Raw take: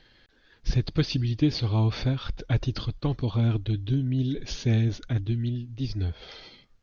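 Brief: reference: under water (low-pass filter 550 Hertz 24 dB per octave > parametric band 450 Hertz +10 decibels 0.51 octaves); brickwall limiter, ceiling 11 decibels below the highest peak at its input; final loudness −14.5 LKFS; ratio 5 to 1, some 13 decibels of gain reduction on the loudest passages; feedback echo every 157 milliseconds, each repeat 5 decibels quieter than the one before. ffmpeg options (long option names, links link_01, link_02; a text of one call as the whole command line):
ffmpeg -i in.wav -af "acompressor=threshold=-33dB:ratio=5,alimiter=level_in=9.5dB:limit=-24dB:level=0:latency=1,volume=-9.5dB,lowpass=frequency=550:width=0.5412,lowpass=frequency=550:width=1.3066,equalizer=frequency=450:width_type=o:width=0.51:gain=10,aecho=1:1:157|314|471|628|785|942|1099:0.562|0.315|0.176|0.0988|0.0553|0.031|0.0173,volume=26dB" out.wav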